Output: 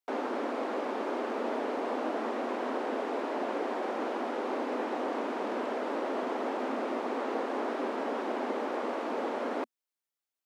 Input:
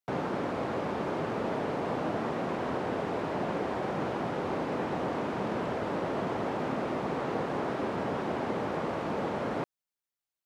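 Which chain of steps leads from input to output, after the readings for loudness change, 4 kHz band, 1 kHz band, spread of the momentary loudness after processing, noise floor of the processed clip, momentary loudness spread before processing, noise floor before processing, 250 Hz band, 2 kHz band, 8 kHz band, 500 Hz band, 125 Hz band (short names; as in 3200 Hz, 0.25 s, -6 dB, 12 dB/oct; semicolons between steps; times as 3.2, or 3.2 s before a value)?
-1.0 dB, -1.0 dB, -0.5 dB, 1 LU, under -85 dBFS, 1 LU, under -85 dBFS, -2.0 dB, -1.0 dB, n/a, 0.0 dB, under -20 dB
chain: elliptic high-pass 240 Hz, stop band 40 dB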